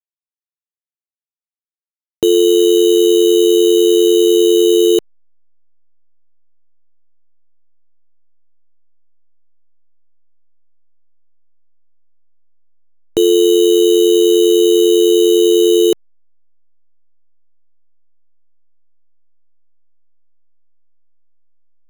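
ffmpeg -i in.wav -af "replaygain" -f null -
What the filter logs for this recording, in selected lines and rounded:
track_gain = -5.3 dB
track_peak = 0.444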